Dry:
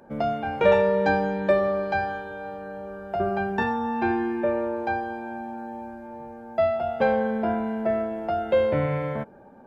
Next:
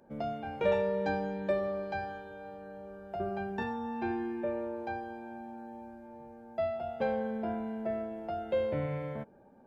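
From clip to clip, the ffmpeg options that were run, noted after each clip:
ffmpeg -i in.wav -af "equalizer=frequency=1300:width_type=o:width=1.5:gain=-4.5,volume=-8.5dB" out.wav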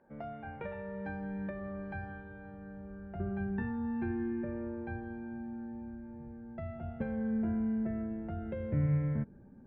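ffmpeg -i in.wav -af "lowpass=frequency=1800:width_type=q:width=2.1,acompressor=threshold=-31dB:ratio=6,asubboost=boost=11:cutoff=210,volume=-6.5dB" out.wav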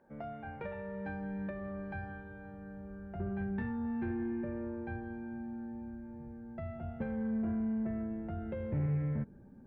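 ffmpeg -i in.wav -af "asoftclip=type=tanh:threshold=-27dB" out.wav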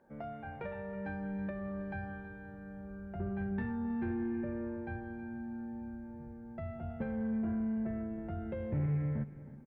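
ffmpeg -i in.wav -af "aecho=1:1:321|642|963:0.158|0.0555|0.0194" out.wav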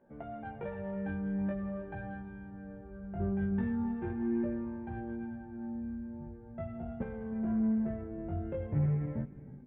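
ffmpeg -i in.wav -filter_complex "[0:a]flanger=delay=16:depth=5.1:speed=0.42,asplit=2[link_01][link_02];[link_02]adynamicsmooth=sensitivity=6.5:basefreq=1000,volume=-1dB[link_03];[link_01][link_03]amix=inputs=2:normalize=0,aresample=8000,aresample=44100" out.wav

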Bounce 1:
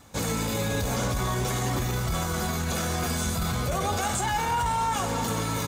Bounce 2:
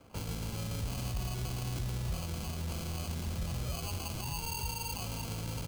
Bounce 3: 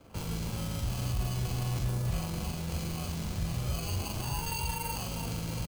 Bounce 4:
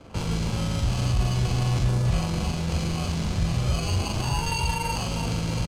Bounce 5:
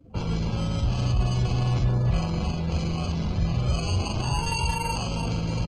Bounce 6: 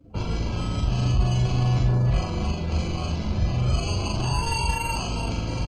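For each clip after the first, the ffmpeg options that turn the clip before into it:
ffmpeg -i in.wav -filter_complex "[0:a]acrusher=samples=24:mix=1:aa=0.000001,acrossover=split=150|3000[link_01][link_02][link_03];[link_02]acompressor=threshold=-43dB:ratio=3[link_04];[link_01][link_04][link_03]amix=inputs=3:normalize=0,volume=-5dB" out.wav
ffmpeg -i in.wav -filter_complex "[0:a]asplit=2[link_01][link_02];[link_02]acrusher=samples=30:mix=1:aa=0.000001:lfo=1:lforange=48:lforate=0.38,volume=-9.5dB[link_03];[link_01][link_03]amix=inputs=2:normalize=0,asplit=2[link_04][link_05];[link_05]adelay=42,volume=-3dB[link_06];[link_04][link_06]amix=inputs=2:normalize=0" out.wav
ffmpeg -i in.wav -af "lowpass=7000,volume=8.5dB" out.wav
ffmpeg -i in.wav -af "afftdn=noise_reduction=23:noise_floor=-39" out.wav
ffmpeg -i in.wav -filter_complex "[0:a]asplit=2[link_01][link_02];[link_02]adelay=39,volume=-4dB[link_03];[link_01][link_03]amix=inputs=2:normalize=0" out.wav

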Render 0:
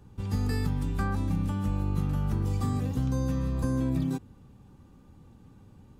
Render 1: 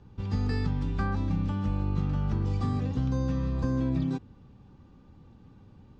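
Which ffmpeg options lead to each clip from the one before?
ffmpeg -i in.wav -af "lowpass=frequency=5500:width=0.5412,lowpass=frequency=5500:width=1.3066" out.wav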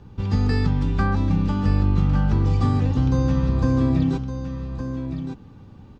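ffmpeg -i in.wav -af "aecho=1:1:1163:0.355,volume=8dB" out.wav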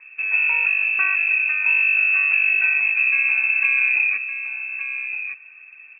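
ffmpeg -i in.wav -af "lowpass=frequency=2300:width_type=q:width=0.5098,lowpass=frequency=2300:width_type=q:width=0.6013,lowpass=frequency=2300:width_type=q:width=0.9,lowpass=frequency=2300:width_type=q:width=2.563,afreqshift=-2700" out.wav

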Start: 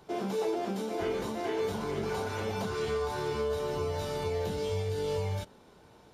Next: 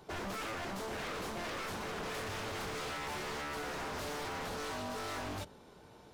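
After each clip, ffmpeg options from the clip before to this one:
ffmpeg -i in.wav -af "aeval=exprs='0.0178*(abs(mod(val(0)/0.0178+3,4)-2)-1)':channel_layout=same,bandreject=frequency=73.93:width_type=h:width=4,bandreject=frequency=147.86:width_type=h:width=4,bandreject=frequency=221.79:width_type=h:width=4" out.wav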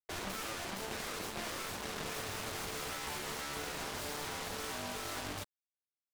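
ffmpeg -i in.wav -af "acrusher=bits=5:mix=0:aa=0.5,volume=1.5dB" out.wav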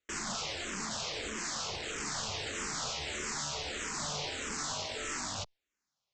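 ffmpeg -i in.wav -filter_complex "[0:a]aresample=16000,aeval=exprs='0.0398*sin(PI/2*4.47*val(0)/0.0398)':channel_layout=same,aresample=44100,asplit=2[link_01][link_02];[link_02]afreqshift=-1.6[link_03];[link_01][link_03]amix=inputs=2:normalize=1,volume=-1dB" out.wav

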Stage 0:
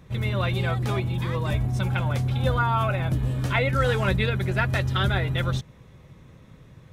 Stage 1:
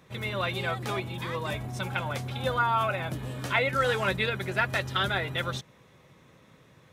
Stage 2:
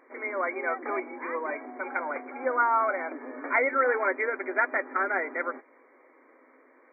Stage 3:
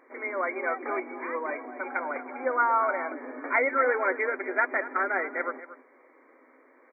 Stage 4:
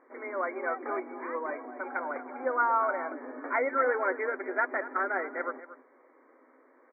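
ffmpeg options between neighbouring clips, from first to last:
ffmpeg -i in.wav -af "highpass=frequency=430:poles=1" out.wav
ffmpeg -i in.wav -af "afftfilt=real='re*between(b*sr/4096,240,2400)':imag='im*between(b*sr/4096,240,2400)':win_size=4096:overlap=0.75,volume=2dB" out.wav
ffmpeg -i in.wav -filter_complex "[0:a]asplit=2[link_01][link_02];[link_02]adelay=233.2,volume=-14dB,highshelf=frequency=4000:gain=-5.25[link_03];[link_01][link_03]amix=inputs=2:normalize=0" out.wav
ffmpeg -i in.wav -af "lowpass=frequency=1800:width=0.5412,lowpass=frequency=1800:width=1.3066,volume=-2dB" out.wav

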